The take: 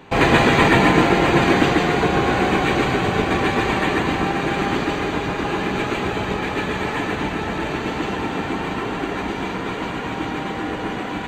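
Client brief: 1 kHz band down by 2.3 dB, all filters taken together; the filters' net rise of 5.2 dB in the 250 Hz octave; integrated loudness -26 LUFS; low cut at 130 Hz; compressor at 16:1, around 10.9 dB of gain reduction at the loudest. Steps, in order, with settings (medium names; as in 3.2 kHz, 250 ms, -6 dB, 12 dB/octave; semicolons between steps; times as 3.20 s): high-pass 130 Hz; peaking EQ 250 Hz +7.5 dB; peaking EQ 1 kHz -3.5 dB; compression 16:1, threshold -18 dBFS; trim -2.5 dB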